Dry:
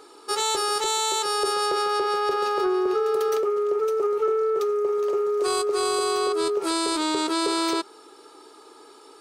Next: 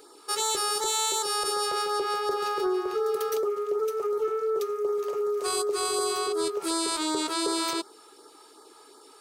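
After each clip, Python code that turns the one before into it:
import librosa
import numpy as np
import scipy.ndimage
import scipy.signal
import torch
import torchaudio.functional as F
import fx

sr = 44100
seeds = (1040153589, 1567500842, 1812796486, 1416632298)

y = fx.high_shelf(x, sr, hz=9900.0, db=10.5)
y = fx.filter_lfo_notch(y, sr, shape='sine', hz=2.7, low_hz=270.0, high_hz=2800.0, q=1.4)
y = F.gain(torch.from_numpy(y), -3.0).numpy()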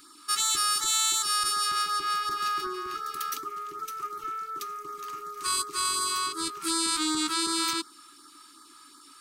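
y = scipy.signal.sosfilt(scipy.signal.ellip(3, 1.0, 60, [300.0, 1100.0], 'bandstop', fs=sr, output='sos'), x)
y = F.gain(torch.from_numpy(y), 3.0).numpy()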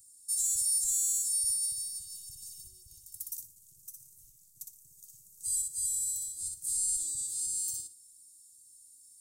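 y = scipy.signal.sosfilt(scipy.signal.ellip(3, 1.0, 80, [110.0, 7600.0], 'bandstop', fs=sr, output='sos'), x)
y = fx.echo_feedback(y, sr, ms=60, feedback_pct=22, wet_db=-4)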